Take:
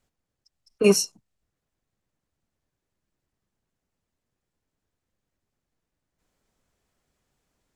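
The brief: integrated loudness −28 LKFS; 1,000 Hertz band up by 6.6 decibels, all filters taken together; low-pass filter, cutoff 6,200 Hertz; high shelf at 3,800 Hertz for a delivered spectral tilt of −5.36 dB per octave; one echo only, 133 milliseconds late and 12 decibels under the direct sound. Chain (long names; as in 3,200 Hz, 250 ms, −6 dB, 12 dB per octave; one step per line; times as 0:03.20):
low-pass filter 6,200 Hz
parametric band 1,000 Hz +8.5 dB
high-shelf EQ 3,800 Hz −8.5 dB
single-tap delay 133 ms −12 dB
level −6.5 dB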